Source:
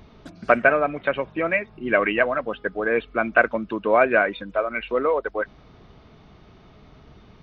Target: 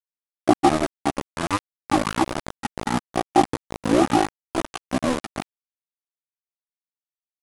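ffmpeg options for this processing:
-af "aeval=exprs='val(0)*gte(abs(val(0)),0.126)':c=same,asetrate=22696,aresample=44100,atempo=1.94306"

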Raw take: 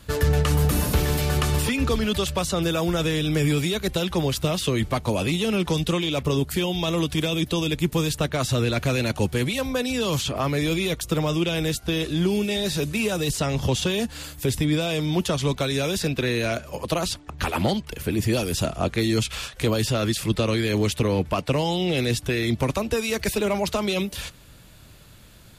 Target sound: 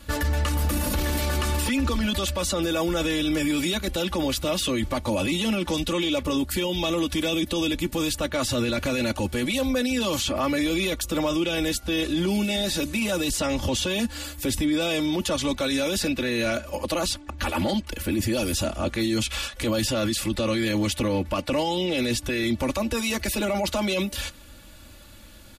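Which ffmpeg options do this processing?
-af "aecho=1:1:3.5:0.79,alimiter=limit=-17dB:level=0:latency=1:release=11"

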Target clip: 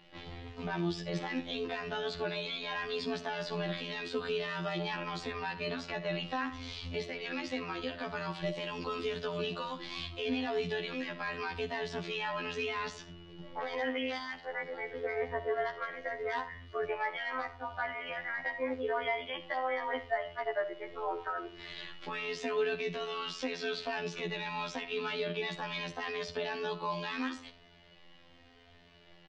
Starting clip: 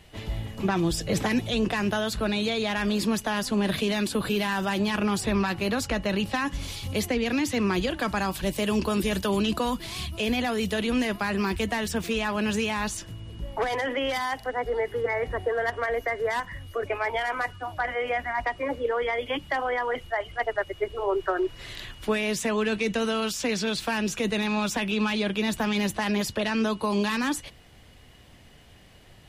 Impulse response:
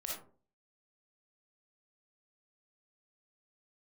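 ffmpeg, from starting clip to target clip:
-filter_complex "[0:a]asplit=2[a][b];[1:a]atrim=start_sample=2205[c];[b][c]afir=irnorm=-1:irlink=0,volume=-8.5dB[d];[a][d]amix=inputs=2:normalize=0,afftfilt=real='hypot(re,im)*cos(PI*b)':imag='0':win_size=2048:overlap=0.75,lowpass=f=4.8k:w=0.5412,lowpass=f=4.8k:w=1.3066,equalizer=f=90:t=o:w=1.6:g=-9,alimiter=limit=-17dB:level=0:latency=1:release=311,asplit=2[e][f];[f]adelay=3.1,afreqshift=-0.82[g];[e][g]amix=inputs=2:normalize=1"

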